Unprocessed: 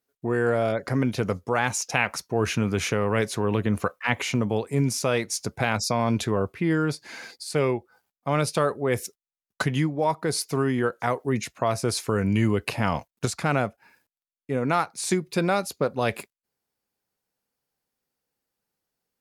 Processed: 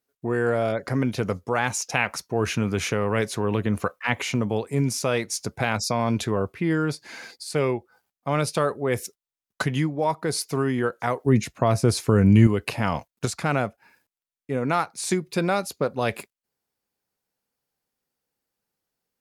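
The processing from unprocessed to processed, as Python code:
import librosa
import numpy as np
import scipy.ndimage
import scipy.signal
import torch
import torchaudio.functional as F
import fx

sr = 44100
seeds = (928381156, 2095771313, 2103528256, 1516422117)

y = fx.low_shelf(x, sr, hz=380.0, db=9.5, at=(11.26, 12.47))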